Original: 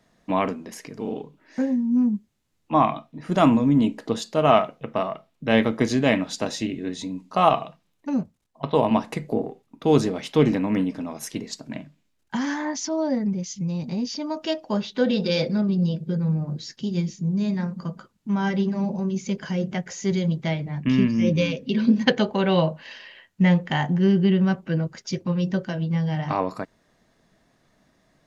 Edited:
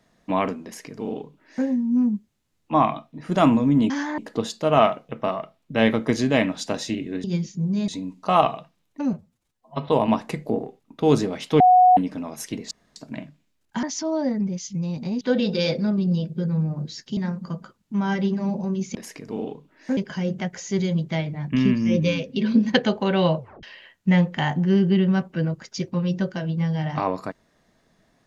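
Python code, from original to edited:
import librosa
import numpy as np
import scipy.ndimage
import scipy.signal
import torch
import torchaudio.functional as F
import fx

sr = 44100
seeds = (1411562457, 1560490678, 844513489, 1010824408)

y = fx.edit(x, sr, fx.duplicate(start_s=0.64, length_s=1.02, to_s=19.3),
    fx.stretch_span(start_s=8.21, length_s=0.5, factor=1.5),
    fx.bleep(start_s=10.43, length_s=0.37, hz=733.0, db=-10.0),
    fx.insert_room_tone(at_s=11.54, length_s=0.25),
    fx.move(start_s=12.41, length_s=0.28, to_s=3.9),
    fx.cut(start_s=14.07, length_s=0.85),
    fx.move(start_s=16.88, length_s=0.64, to_s=6.96),
    fx.tape_stop(start_s=22.71, length_s=0.25), tone=tone)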